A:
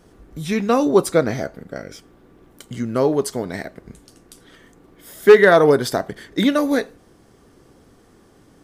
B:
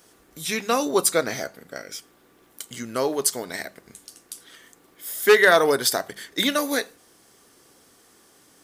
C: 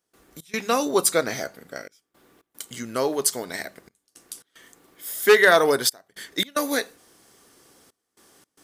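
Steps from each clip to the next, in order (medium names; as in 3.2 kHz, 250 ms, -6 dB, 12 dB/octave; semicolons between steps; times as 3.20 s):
tilt EQ +3.5 dB/octave; hum notches 50/100/150/200 Hz; trim -2.5 dB
trance gate ".xx.xxxxxxxxxx." 112 bpm -24 dB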